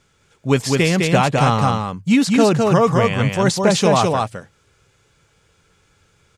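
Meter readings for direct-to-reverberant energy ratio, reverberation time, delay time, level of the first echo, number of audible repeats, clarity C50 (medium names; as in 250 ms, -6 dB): no reverb, no reverb, 207 ms, -3.0 dB, 1, no reverb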